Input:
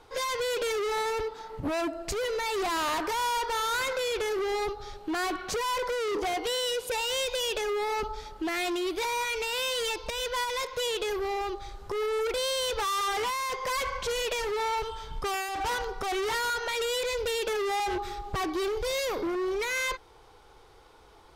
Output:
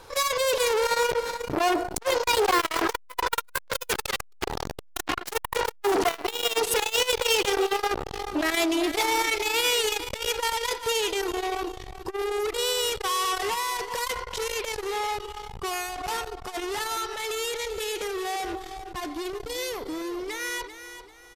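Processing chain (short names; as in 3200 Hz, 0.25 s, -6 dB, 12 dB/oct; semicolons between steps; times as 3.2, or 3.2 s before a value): Doppler pass-by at 4.43, 23 m/s, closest 24 m; high shelf 6100 Hz +8 dB; sine folder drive 13 dB, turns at -21 dBFS; feedback echo 0.39 s, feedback 35%, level -11.5 dB; core saturation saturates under 600 Hz; gain +3.5 dB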